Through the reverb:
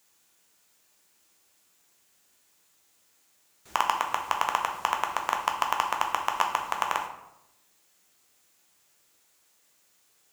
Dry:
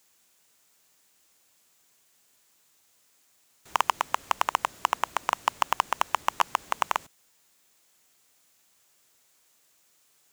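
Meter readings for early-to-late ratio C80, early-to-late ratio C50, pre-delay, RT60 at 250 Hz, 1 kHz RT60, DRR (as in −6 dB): 10.0 dB, 7.0 dB, 7 ms, 1.1 s, 0.80 s, 2.0 dB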